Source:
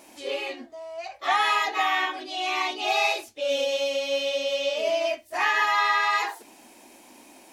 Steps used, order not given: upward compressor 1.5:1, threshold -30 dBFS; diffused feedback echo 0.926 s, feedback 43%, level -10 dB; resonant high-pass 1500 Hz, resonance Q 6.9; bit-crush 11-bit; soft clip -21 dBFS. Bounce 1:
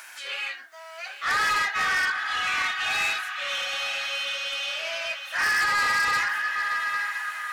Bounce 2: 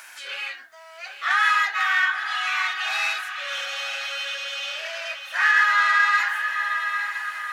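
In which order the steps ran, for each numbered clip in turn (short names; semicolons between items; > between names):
bit-crush > resonant high-pass > upward compressor > diffused feedback echo > soft clip; diffused feedback echo > upward compressor > soft clip > resonant high-pass > bit-crush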